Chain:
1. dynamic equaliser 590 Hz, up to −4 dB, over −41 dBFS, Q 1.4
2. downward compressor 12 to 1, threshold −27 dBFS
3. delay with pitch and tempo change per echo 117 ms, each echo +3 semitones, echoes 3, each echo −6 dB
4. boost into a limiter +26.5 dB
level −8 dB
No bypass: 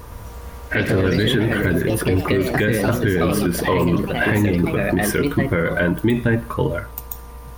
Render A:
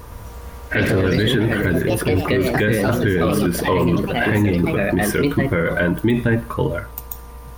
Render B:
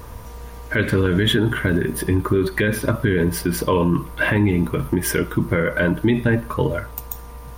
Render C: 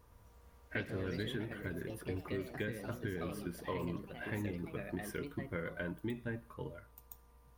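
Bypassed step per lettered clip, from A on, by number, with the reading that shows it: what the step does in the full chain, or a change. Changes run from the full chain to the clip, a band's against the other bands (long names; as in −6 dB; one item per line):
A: 2, average gain reduction 2.0 dB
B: 3, 8 kHz band +1.5 dB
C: 4, change in crest factor +7.5 dB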